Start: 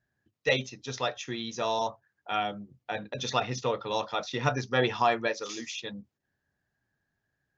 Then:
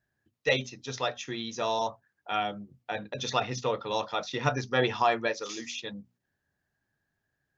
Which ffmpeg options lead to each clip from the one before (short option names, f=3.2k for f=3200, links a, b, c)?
-af "bandreject=f=60:t=h:w=6,bandreject=f=120:t=h:w=6,bandreject=f=180:t=h:w=6,bandreject=f=240:t=h:w=6"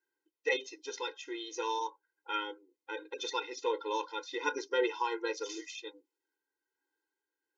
-af "tremolo=f=1.3:d=0.37,afftfilt=real='re*eq(mod(floor(b*sr/1024/270),2),1)':imag='im*eq(mod(floor(b*sr/1024/270),2),1)':win_size=1024:overlap=0.75"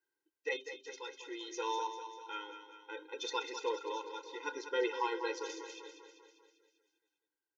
-filter_complex "[0:a]tremolo=f=0.59:d=0.58,asplit=2[a][b];[b]aecho=0:1:197|394|591|788|985|1182|1379:0.335|0.191|0.109|0.062|0.0354|0.0202|0.0115[c];[a][c]amix=inputs=2:normalize=0,volume=-2dB"